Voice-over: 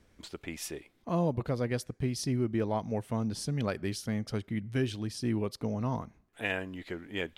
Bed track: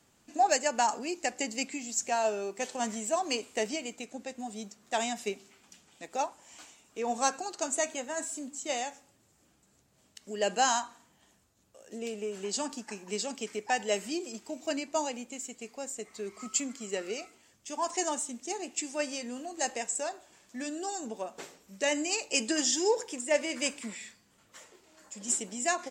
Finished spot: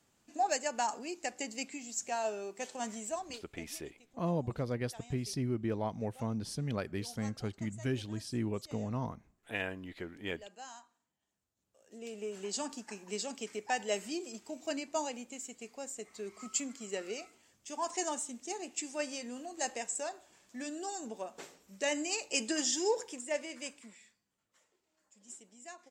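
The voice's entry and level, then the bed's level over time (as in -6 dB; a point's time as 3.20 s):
3.10 s, -4.0 dB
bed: 3.08 s -6 dB
3.57 s -22.5 dB
11.26 s -22.5 dB
12.26 s -4 dB
23.00 s -4 dB
24.38 s -20 dB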